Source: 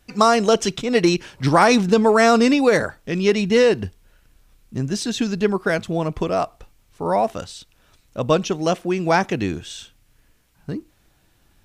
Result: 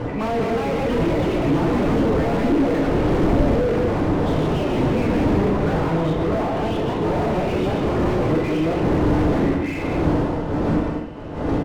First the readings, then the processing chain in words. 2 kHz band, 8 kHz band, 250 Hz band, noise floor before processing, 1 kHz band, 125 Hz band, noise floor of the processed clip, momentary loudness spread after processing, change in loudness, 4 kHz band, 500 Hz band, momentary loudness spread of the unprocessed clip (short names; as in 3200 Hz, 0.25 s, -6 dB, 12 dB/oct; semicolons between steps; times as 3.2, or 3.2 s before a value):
-5.5 dB, under -10 dB, +2.5 dB, -60 dBFS, -3.5 dB, +6.0 dB, -26 dBFS, 4 LU, -1.5 dB, -7.5 dB, -1.5 dB, 18 LU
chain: nonlinear frequency compression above 1800 Hz 4:1; wind noise 450 Hz -19 dBFS; notch 2300 Hz, Q 15; in parallel at +0.5 dB: compressor, threshold -27 dBFS, peak gain reduction 23.5 dB; on the sum: soft clip -13 dBFS, distortion -7 dB; on a send: echo 0.191 s -6.5 dB; on the sum: FDN reverb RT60 0.54 s, low-frequency decay 1.05×, high-frequency decay 0.95×, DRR -0.5 dB; echoes that change speed 0.379 s, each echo +3 st, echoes 2; slew limiter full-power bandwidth 100 Hz; gain -4.5 dB